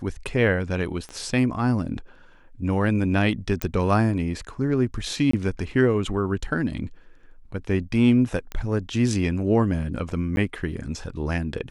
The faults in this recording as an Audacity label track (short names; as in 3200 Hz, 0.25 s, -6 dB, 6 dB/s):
1.090000	1.090000	pop -25 dBFS
3.620000	3.620000	pop -9 dBFS
5.310000	5.330000	gap 24 ms
8.520000	8.520000	pop -18 dBFS
10.360000	10.370000	gap